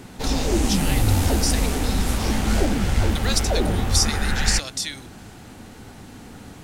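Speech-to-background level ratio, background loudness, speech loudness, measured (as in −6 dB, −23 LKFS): −4.0 dB, −23.0 LKFS, −27.0 LKFS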